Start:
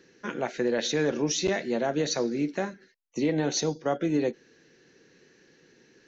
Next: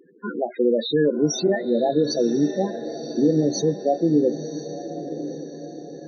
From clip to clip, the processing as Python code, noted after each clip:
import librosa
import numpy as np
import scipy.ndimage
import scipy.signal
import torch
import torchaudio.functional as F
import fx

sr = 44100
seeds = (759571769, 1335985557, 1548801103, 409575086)

y = fx.spec_topn(x, sr, count=8)
y = fx.echo_diffused(y, sr, ms=1008, feedback_pct=50, wet_db=-11.0)
y = y * librosa.db_to_amplitude(7.5)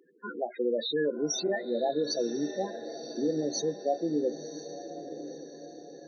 y = fx.highpass(x, sr, hz=620.0, slope=6)
y = y * librosa.db_to_amplitude(-4.0)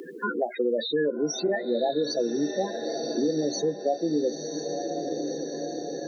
y = fx.band_squash(x, sr, depth_pct=70)
y = y * librosa.db_to_amplitude(3.5)